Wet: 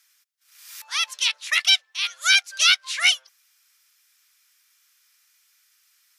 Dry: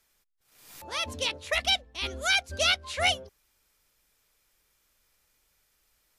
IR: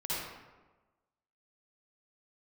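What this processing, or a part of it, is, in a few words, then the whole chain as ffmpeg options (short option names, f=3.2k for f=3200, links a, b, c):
headphones lying on a table: -af "highpass=f=1.3k:w=0.5412,highpass=f=1.3k:w=1.3066,equalizer=f=5.6k:t=o:w=0.47:g=4,volume=7.5dB"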